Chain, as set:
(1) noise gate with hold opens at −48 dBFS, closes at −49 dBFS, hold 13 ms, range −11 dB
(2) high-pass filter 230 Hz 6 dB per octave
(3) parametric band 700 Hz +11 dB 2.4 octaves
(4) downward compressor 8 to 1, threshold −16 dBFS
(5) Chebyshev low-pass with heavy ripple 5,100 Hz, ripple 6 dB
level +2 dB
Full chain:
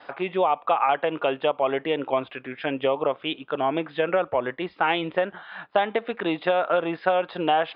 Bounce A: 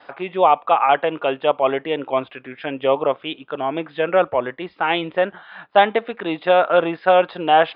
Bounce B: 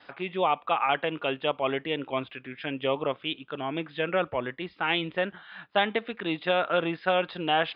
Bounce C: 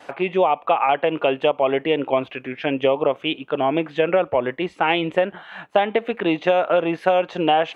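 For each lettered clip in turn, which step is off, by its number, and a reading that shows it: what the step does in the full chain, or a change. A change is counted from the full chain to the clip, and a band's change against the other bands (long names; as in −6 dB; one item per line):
4, average gain reduction 3.0 dB
3, 4 kHz band +4.5 dB
5, 1 kHz band −2.0 dB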